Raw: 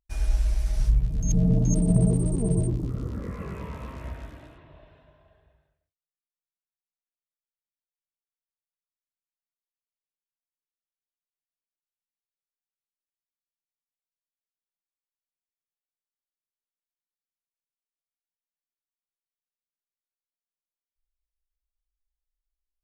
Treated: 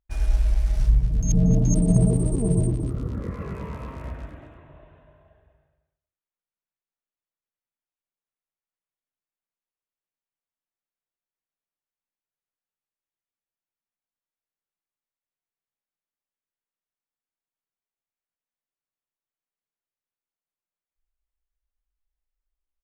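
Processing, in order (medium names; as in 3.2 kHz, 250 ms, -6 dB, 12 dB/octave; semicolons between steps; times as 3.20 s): local Wiener filter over 9 samples; delay 231 ms -13.5 dB; trim +2.5 dB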